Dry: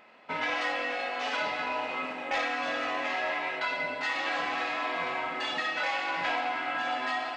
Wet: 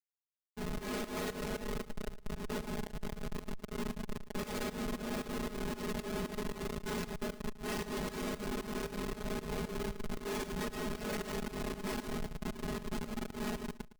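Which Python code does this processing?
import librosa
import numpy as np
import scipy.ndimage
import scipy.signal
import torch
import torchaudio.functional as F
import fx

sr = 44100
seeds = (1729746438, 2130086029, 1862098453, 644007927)

p1 = fx.tracing_dist(x, sr, depth_ms=0.17)
p2 = fx.highpass(p1, sr, hz=57.0, slope=6)
p3 = librosa.effects.preemphasis(p2, coef=0.8, zi=[0.0])
p4 = fx.spec_erase(p3, sr, start_s=0.85, length_s=1.15, low_hz=2200.0, high_hz=7200.0)
p5 = fx.low_shelf_res(p4, sr, hz=570.0, db=12.5, q=3.0)
p6 = fx.schmitt(p5, sr, flips_db=-34.5)
p7 = fx.stretch_grains(p6, sr, factor=1.9, grain_ms=20.0)
p8 = fx.volume_shaper(p7, sr, bpm=115, per_beat=2, depth_db=-18, release_ms=172.0, shape='fast start')
p9 = p8 + fx.echo_feedback(p8, sr, ms=111, feedback_pct=20, wet_db=-16.0, dry=0)
y = p9 * 10.0 ** (4.5 / 20.0)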